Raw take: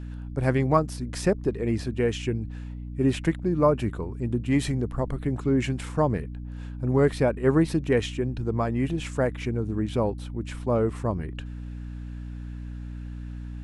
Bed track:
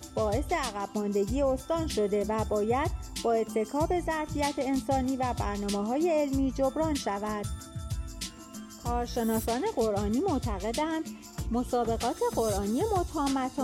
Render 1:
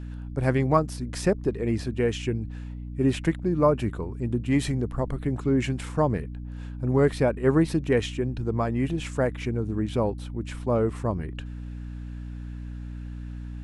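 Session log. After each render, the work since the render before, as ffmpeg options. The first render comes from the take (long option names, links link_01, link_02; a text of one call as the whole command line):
ffmpeg -i in.wav -af anull out.wav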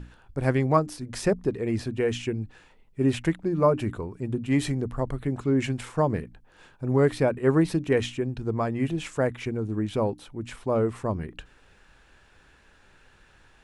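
ffmpeg -i in.wav -af "bandreject=frequency=60:width_type=h:width=6,bandreject=frequency=120:width_type=h:width=6,bandreject=frequency=180:width_type=h:width=6,bandreject=frequency=240:width_type=h:width=6,bandreject=frequency=300:width_type=h:width=6" out.wav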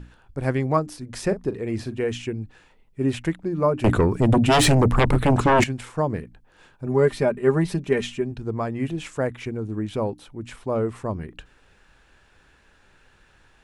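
ffmpeg -i in.wav -filter_complex "[0:a]asettb=1/sr,asplit=3[link_01][link_02][link_03];[link_01]atrim=end=1.264[link_04];[link_02]atrim=start=1.26:end=2.04,asetpts=PTS-STARTPTS,afade=type=in:duration=0.004:curve=qsin,afade=type=out:start_time=0.776:duration=0.004:curve=qsin,asplit=2[link_05][link_06];[link_06]adelay=41,volume=-13dB[link_07];[link_05][link_07]amix=inputs=2:normalize=0,atrim=end_sample=34398[link_08];[link_03]atrim=start=2.036[link_09];[link_04][link_08]acrossfade=duration=0.004:curve1=hsin:curve2=qsin[link_10];[link_10][link_09]acrossfade=duration=0.004:curve1=qsin:curve2=hsin,asettb=1/sr,asplit=3[link_11][link_12][link_13];[link_11]atrim=end=3.844[link_14];[link_12]atrim=start=3.84:end=5.64,asetpts=PTS-STARTPTS,afade=type=in:duration=0.004:curve=qsin,afade=type=out:start_time=1.796:duration=0.004:curve=qsin,aeval=exprs='0.237*sin(PI/2*4.47*val(0)/0.237)':channel_layout=same[link_15];[link_13]atrim=start=5.636[link_16];[link_14][link_15]acrossfade=duration=0.004:curve1=hsin:curve2=qsin[link_17];[link_17][link_16]acrossfade=duration=0.004:curve1=qsin:curve2=hsin,asettb=1/sr,asplit=3[link_18][link_19][link_20];[link_18]atrim=end=6.864[link_21];[link_19]atrim=start=6.86:end=8.32,asetpts=PTS-STARTPTS,afade=type=in:duration=0.004:curve=qsin,afade=type=out:start_time=1.456:duration=0.004:curve=qsin,aecho=1:1:5:0.65,atrim=end_sample=64386[link_22];[link_20]atrim=start=8.316[link_23];[link_21][link_22]acrossfade=duration=0.004:curve1=hsin:curve2=qsin[link_24];[link_24][link_23]acrossfade=duration=0.004:curve1=qsin:curve2=hsin" out.wav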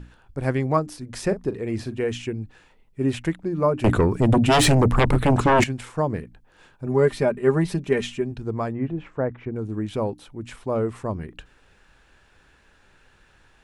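ffmpeg -i in.wav -filter_complex "[0:a]asettb=1/sr,asplit=3[link_01][link_02][link_03];[link_01]atrim=end=8.724[link_04];[link_02]atrim=start=8.72:end=9.56,asetpts=PTS-STARTPTS,afade=type=in:duration=0.004:curve=qsin,afade=type=out:start_time=0.836:duration=0.004:curve=qsin,lowpass=1400[link_05];[link_03]atrim=start=9.556[link_06];[link_04][link_05]acrossfade=duration=0.004:curve1=hsin:curve2=qsin[link_07];[link_07][link_06]acrossfade=duration=0.004:curve1=qsin:curve2=hsin" out.wav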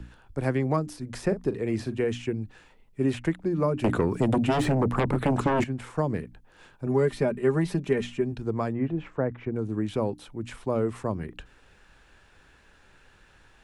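ffmpeg -i in.wav -filter_complex "[0:a]acrossover=split=130|370|2000[link_01][link_02][link_03][link_04];[link_01]acompressor=threshold=-38dB:ratio=4[link_05];[link_02]acompressor=threshold=-24dB:ratio=4[link_06];[link_03]acompressor=threshold=-27dB:ratio=4[link_07];[link_04]acompressor=threshold=-43dB:ratio=4[link_08];[link_05][link_06][link_07][link_08]amix=inputs=4:normalize=0" out.wav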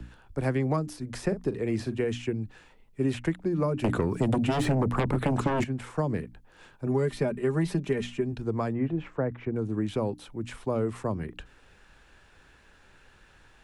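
ffmpeg -i in.wav -filter_complex "[0:a]acrossover=split=180|3000[link_01][link_02][link_03];[link_02]acompressor=threshold=-24dB:ratio=6[link_04];[link_01][link_04][link_03]amix=inputs=3:normalize=0" out.wav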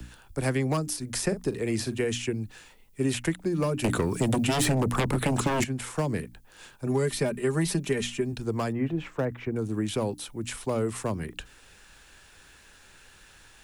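ffmpeg -i in.wav -filter_complex "[0:a]acrossover=split=520|1500[link_01][link_02][link_03];[link_02]asoftclip=type=hard:threshold=-29dB[link_04];[link_01][link_04][link_03]amix=inputs=3:normalize=0,crystalizer=i=4:c=0" out.wav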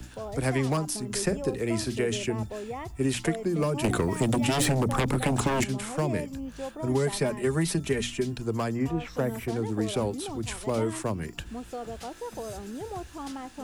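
ffmpeg -i in.wav -i bed.wav -filter_complex "[1:a]volume=-9dB[link_01];[0:a][link_01]amix=inputs=2:normalize=0" out.wav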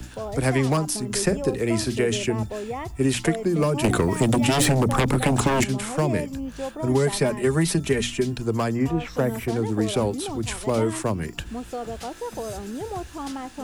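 ffmpeg -i in.wav -af "volume=5dB" out.wav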